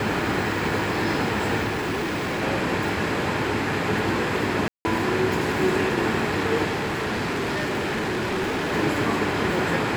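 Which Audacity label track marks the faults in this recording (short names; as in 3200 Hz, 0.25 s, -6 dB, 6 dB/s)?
1.690000	2.430000	clipped -23 dBFS
4.680000	4.850000	gap 0.17 s
6.660000	8.730000	clipped -22.5 dBFS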